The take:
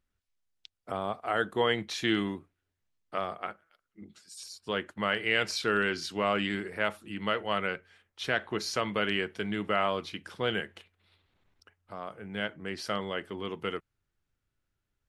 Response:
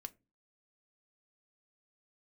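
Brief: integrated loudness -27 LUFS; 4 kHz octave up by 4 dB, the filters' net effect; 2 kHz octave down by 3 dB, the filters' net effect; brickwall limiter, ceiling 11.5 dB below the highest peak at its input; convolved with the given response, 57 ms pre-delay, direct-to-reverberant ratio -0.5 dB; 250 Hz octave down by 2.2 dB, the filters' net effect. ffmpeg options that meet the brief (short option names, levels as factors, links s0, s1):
-filter_complex "[0:a]equalizer=f=250:t=o:g=-3,equalizer=f=2000:t=o:g=-6,equalizer=f=4000:t=o:g=8.5,alimiter=level_in=1.12:limit=0.0631:level=0:latency=1,volume=0.891,asplit=2[s0][s1];[1:a]atrim=start_sample=2205,adelay=57[s2];[s1][s2]afir=irnorm=-1:irlink=0,volume=1.88[s3];[s0][s3]amix=inputs=2:normalize=0,volume=2.24"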